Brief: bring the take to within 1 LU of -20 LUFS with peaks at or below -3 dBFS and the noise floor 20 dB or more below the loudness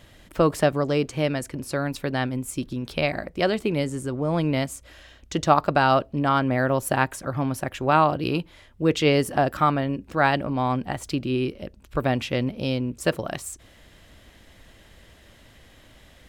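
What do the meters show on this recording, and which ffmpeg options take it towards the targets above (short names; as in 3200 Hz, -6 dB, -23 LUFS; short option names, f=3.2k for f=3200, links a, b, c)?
loudness -24.5 LUFS; peak -3.0 dBFS; loudness target -20.0 LUFS
-> -af "volume=4.5dB,alimiter=limit=-3dB:level=0:latency=1"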